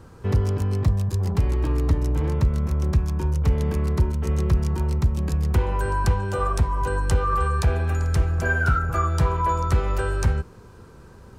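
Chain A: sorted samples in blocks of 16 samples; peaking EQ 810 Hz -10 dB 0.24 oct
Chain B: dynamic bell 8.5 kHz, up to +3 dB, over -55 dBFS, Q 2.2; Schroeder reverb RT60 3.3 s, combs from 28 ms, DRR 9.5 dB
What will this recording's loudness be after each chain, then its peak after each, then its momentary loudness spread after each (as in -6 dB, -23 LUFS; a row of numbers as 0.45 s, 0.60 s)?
-23.0 LUFS, -22.5 LUFS; -10.5 dBFS, -9.0 dBFS; 3 LU, 3 LU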